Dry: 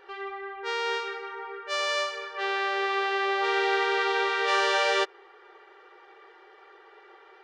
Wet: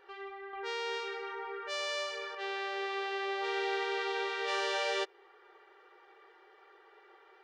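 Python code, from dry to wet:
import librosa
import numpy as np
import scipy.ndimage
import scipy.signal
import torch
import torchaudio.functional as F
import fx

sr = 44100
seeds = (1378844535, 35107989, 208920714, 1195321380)

y = fx.dynamic_eq(x, sr, hz=1300.0, q=1.4, threshold_db=-41.0, ratio=4.0, max_db=-5)
y = fx.env_flatten(y, sr, amount_pct=50, at=(0.53, 2.35))
y = y * librosa.db_to_amplitude(-7.0)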